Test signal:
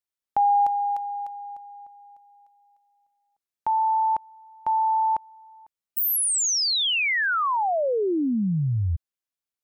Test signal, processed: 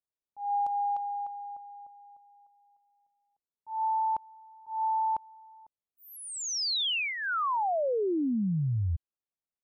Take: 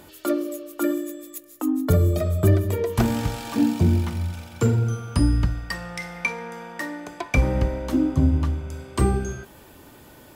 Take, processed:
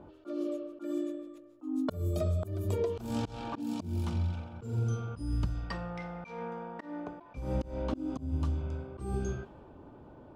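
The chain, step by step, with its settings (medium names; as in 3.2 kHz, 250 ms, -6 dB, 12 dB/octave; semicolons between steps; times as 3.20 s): level-controlled noise filter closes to 1.1 kHz, open at -15.5 dBFS; peaking EQ 1.9 kHz -10.5 dB 0.57 oct; compression 16:1, threshold -23 dBFS; slow attack 179 ms; trim -2.5 dB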